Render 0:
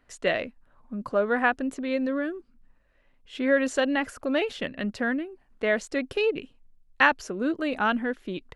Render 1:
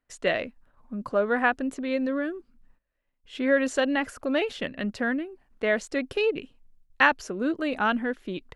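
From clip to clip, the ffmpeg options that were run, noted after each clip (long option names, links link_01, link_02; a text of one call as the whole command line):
ffmpeg -i in.wav -af "agate=range=-16dB:threshold=-57dB:ratio=16:detection=peak" out.wav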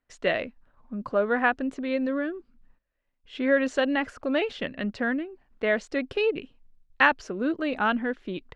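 ffmpeg -i in.wav -af "lowpass=4900" out.wav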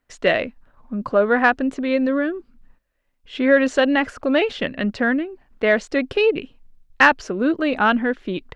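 ffmpeg -i in.wav -af "asoftclip=type=tanh:threshold=-8dB,volume=7.5dB" out.wav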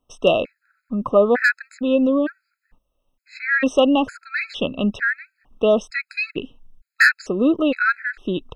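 ffmpeg -i in.wav -af "aeval=exprs='0.531*(abs(mod(val(0)/0.531+3,4)-2)-1)':channel_layout=same,afftfilt=real='re*gt(sin(2*PI*1.1*pts/sr)*(1-2*mod(floor(b*sr/1024/1300),2)),0)':imag='im*gt(sin(2*PI*1.1*pts/sr)*(1-2*mod(floor(b*sr/1024/1300),2)),0)':win_size=1024:overlap=0.75,volume=2.5dB" out.wav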